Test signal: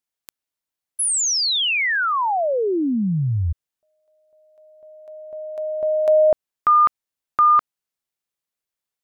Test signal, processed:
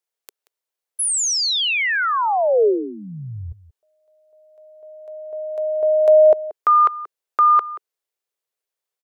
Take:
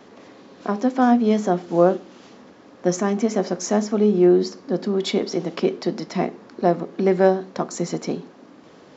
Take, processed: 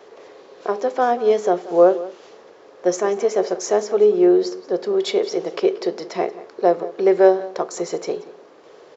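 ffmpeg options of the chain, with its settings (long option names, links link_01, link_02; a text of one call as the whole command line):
ffmpeg -i in.wav -filter_complex "[0:a]lowshelf=frequency=320:width_type=q:width=3:gain=-9,asplit=2[link_01][link_02];[link_02]adelay=180.8,volume=-17dB,highshelf=frequency=4000:gain=-4.07[link_03];[link_01][link_03]amix=inputs=2:normalize=0" out.wav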